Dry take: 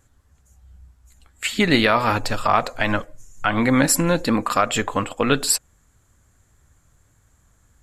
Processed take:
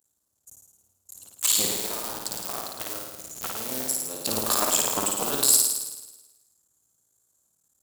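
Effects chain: cycle switcher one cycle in 2, muted; HPF 62 Hz; RIAA curve recording; gate -53 dBFS, range -17 dB; bell 2000 Hz -15 dB 1.3 oct; 1.66–4.26 compressor 5:1, threshold -38 dBFS, peak gain reduction 28.5 dB; sample leveller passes 1; limiter -15.5 dBFS, peak gain reduction 20 dB; flutter echo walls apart 9.3 m, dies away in 1.1 s; gain +6 dB

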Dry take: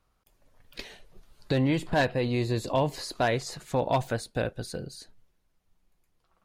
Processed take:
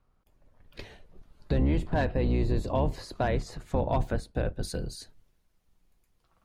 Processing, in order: octaver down 2 oct, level +4 dB; limiter -16.5 dBFS, peak gain reduction 4.5 dB; high shelf 2500 Hz -10.5 dB, from 4.63 s +2 dB

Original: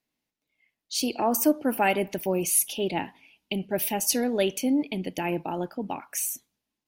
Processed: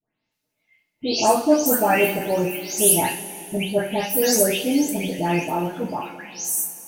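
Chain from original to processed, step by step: spectral delay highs late, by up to 0.311 s; two-slope reverb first 0.32 s, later 3.1 s, from -19 dB, DRR -2.5 dB; gain +3 dB

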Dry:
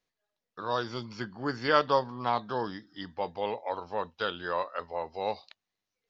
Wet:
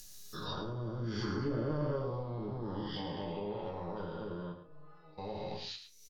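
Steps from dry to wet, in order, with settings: spectral dilation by 0.48 s; high shelf 4900 Hz +9 dB; treble ducked by the level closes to 500 Hz, closed at -19.5 dBFS; EQ curve 120 Hz 0 dB, 690 Hz -21 dB, 1900 Hz -16 dB, 6100 Hz +5 dB; upward compressor, threshold -41 dBFS; 4.52–5.18 metallic resonator 150 Hz, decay 0.6 s, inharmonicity 0.008; echo 0.108 s -10 dB; reverb RT60 0.20 s, pre-delay 5 ms, DRR -1 dB

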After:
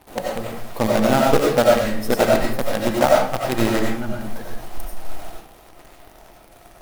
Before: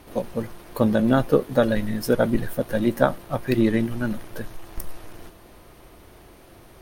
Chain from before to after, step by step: bell 790 Hz +9.5 dB 0.48 oct; in parallel at -5.5 dB: companded quantiser 2-bit; on the sum: reverb RT60 0.50 s, pre-delay 50 ms, DRR -2.5 dB; gain -8 dB

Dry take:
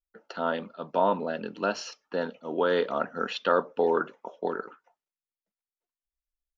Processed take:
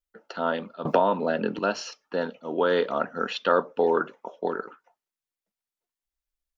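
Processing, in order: 0.85–1.59 three-band squash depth 100%; gain +2 dB

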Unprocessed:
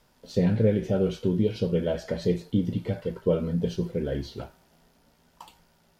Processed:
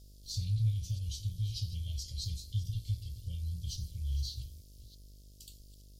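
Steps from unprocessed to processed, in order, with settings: reverse delay 0.33 s, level -14 dB; inverse Chebyshev band-stop 210–1800 Hz, stop band 50 dB; buzz 50 Hz, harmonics 13, -61 dBFS -9 dB/oct; gain +5.5 dB

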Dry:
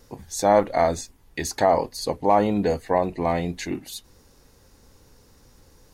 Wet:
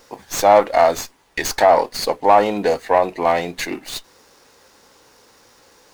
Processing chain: overdrive pedal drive 10 dB, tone 1100 Hz, clips at -6 dBFS; RIAA curve recording; running maximum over 3 samples; gain +7.5 dB

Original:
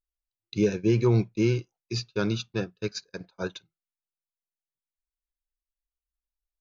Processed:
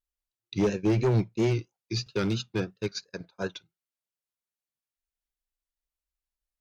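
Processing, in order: vibrato 3 Hz 76 cents; one-sided clip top -20.5 dBFS, bottom -16.5 dBFS; 2.06–2.77 three-band squash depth 40%

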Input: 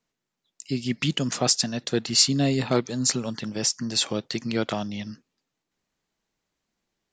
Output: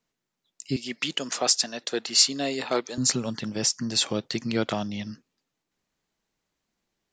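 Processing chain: 0.76–2.98 HPF 410 Hz 12 dB/oct

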